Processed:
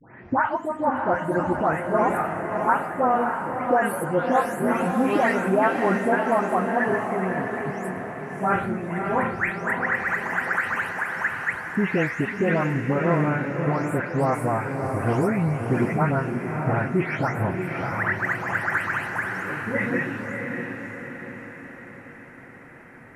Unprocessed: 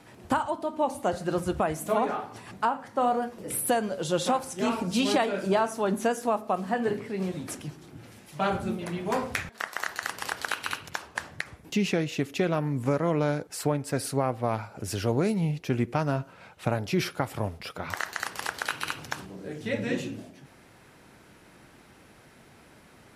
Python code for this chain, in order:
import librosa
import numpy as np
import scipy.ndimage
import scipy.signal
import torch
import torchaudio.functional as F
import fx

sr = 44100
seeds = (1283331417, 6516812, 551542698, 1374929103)

y = fx.spec_delay(x, sr, highs='late', ms=349)
y = fx.high_shelf_res(y, sr, hz=2700.0, db=-12.0, q=3.0)
y = fx.echo_diffused(y, sr, ms=615, feedback_pct=54, wet_db=-5)
y = y * librosa.db_to_amplitude(3.5)